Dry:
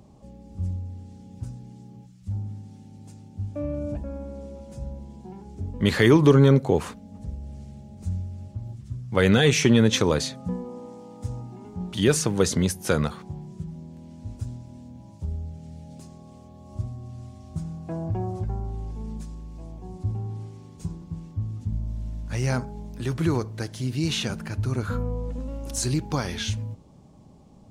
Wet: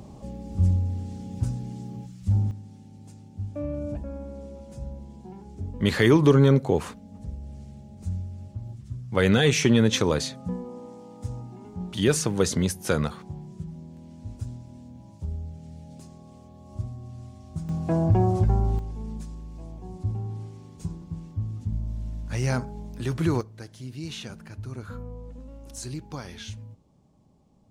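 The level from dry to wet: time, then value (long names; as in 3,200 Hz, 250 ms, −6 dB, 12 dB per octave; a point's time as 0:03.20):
+8 dB
from 0:02.51 −1.5 dB
from 0:17.69 +8 dB
from 0:18.79 −0.5 dB
from 0:23.41 −10 dB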